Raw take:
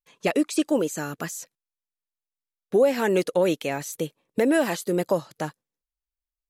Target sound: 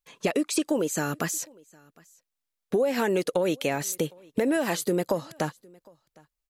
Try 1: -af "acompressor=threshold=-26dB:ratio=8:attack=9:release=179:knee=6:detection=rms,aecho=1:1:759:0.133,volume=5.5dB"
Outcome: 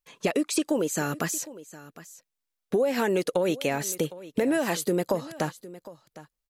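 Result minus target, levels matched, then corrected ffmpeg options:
echo-to-direct +9.5 dB
-af "acompressor=threshold=-26dB:ratio=8:attack=9:release=179:knee=6:detection=rms,aecho=1:1:759:0.0447,volume=5.5dB"

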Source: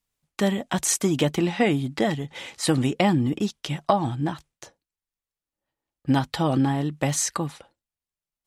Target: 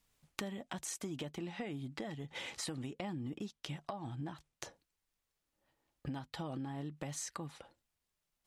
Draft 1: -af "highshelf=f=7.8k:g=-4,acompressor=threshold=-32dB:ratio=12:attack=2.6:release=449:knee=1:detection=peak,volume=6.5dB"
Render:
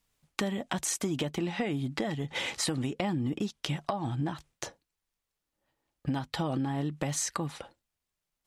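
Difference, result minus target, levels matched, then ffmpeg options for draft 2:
compressor: peak gain reduction -10.5 dB
-af "highshelf=f=7.8k:g=-4,acompressor=threshold=-43.5dB:ratio=12:attack=2.6:release=449:knee=1:detection=peak,volume=6.5dB"

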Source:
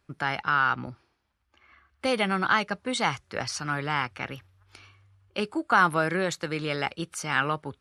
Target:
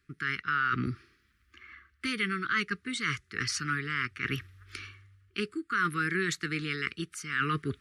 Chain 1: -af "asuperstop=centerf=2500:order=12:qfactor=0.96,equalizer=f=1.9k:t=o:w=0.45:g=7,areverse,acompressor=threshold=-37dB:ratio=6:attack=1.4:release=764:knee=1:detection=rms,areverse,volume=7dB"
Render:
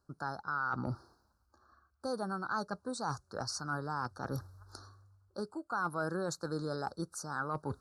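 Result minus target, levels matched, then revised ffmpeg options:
compressor: peak gain reduction +6 dB; 2000 Hz band -5.0 dB
-af "asuperstop=centerf=710:order=12:qfactor=0.96,equalizer=f=1.9k:t=o:w=0.45:g=7,areverse,acompressor=threshold=-30dB:ratio=6:attack=1.4:release=764:knee=1:detection=rms,areverse,volume=7dB"

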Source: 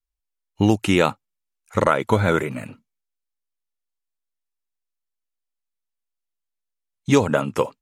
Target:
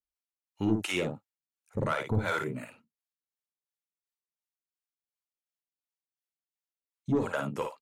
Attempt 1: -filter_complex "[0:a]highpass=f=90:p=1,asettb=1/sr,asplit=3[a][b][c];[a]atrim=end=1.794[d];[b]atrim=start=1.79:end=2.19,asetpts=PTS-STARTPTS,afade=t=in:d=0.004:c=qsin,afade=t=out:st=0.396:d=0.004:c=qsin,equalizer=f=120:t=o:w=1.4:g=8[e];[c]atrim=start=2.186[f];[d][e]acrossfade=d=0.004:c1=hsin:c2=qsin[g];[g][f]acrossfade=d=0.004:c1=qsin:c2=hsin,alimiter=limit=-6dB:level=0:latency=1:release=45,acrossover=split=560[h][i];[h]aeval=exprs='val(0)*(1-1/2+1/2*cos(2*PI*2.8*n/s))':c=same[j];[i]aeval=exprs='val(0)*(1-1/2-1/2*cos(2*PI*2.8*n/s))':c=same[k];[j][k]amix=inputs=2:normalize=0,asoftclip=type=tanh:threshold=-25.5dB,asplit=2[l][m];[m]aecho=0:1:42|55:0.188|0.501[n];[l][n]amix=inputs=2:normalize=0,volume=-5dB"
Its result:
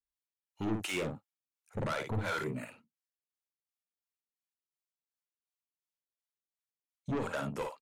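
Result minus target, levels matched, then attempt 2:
soft clip: distortion +9 dB
-filter_complex "[0:a]highpass=f=90:p=1,asettb=1/sr,asplit=3[a][b][c];[a]atrim=end=1.794[d];[b]atrim=start=1.79:end=2.19,asetpts=PTS-STARTPTS,afade=t=in:d=0.004:c=qsin,afade=t=out:st=0.396:d=0.004:c=qsin,equalizer=f=120:t=o:w=1.4:g=8[e];[c]atrim=start=2.186[f];[d][e]acrossfade=d=0.004:c1=hsin:c2=qsin[g];[g][f]acrossfade=d=0.004:c1=qsin:c2=hsin,alimiter=limit=-6dB:level=0:latency=1:release=45,acrossover=split=560[h][i];[h]aeval=exprs='val(0)*(1-1/2+1/2*cos(2*PI*2.8*n/s))':c=same[j];[i]aeval=exprs='val(0)*(1-1/2-1/2*cos(2*PI*2.8*n/s))':c=same[k];[j][k]amix=inputs=2:normalize=0,asoftclip=type=tanh:threshold=-15dB,asplit=2[l][m];[m]aecho=0:1:42|55:0.188|0.501[n];[l][n]amix=inputs=2:normalize=0,volume=-5dB"

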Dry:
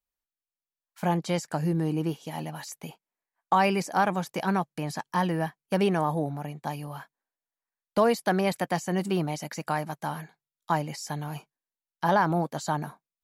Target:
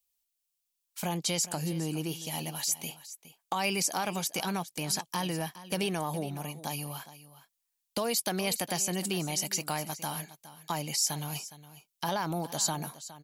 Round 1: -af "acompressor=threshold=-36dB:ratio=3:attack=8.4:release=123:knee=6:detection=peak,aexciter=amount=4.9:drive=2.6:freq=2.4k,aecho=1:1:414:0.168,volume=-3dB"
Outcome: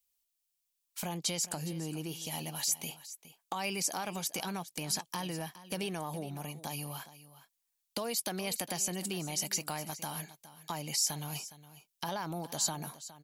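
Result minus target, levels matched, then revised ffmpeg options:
compressor: peak gain reduction +5.5 dB
-af "acompressor=threshold=-27.5dB:ratio=3:attack=8.4:release=123:knee=6:detection=peak,aexciter=amount=4.9:drive=2.6:freq=2.4k,aecho=1:1:414:0.168,volume=-3dB"

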